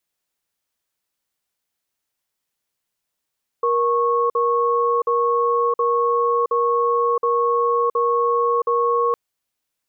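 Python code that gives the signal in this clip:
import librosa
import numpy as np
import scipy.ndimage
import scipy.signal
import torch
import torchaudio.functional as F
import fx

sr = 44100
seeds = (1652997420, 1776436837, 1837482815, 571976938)

y = fx.cadence(sr, length_s=5.51, low_hz=473.0, high_hz=1100.0, on_s=0.67, off_s=0.05, level_db=-18.5)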